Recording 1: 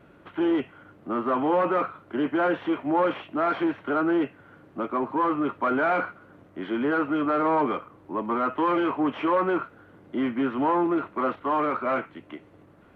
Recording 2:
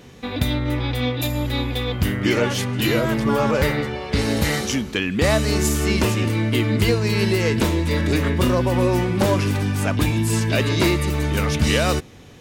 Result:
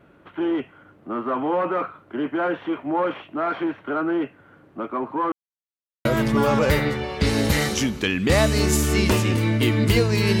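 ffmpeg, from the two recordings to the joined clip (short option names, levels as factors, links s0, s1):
-filter_complex "[0:a]apad=whole_dur=10.4,atrim=end=10.4,asplit=2[s0][s1];[s0]atrim=end=5.32,asetpts=PTS-STARTPTS,afade=t=out:st=5.316:d=0.004:c=hsin[s2];[s1]atrim=start=5.32:end=6.05,asetpts=PTS-STARTPTS,volume=0[s3];[1:a]atrim=start=2.97:end=7.32,asetpts=PTS-STARTPTS,afade=t=in:d=0.004:c=hsin[s4];[s2][s3][s4]concat=n=3:v=0:a=1"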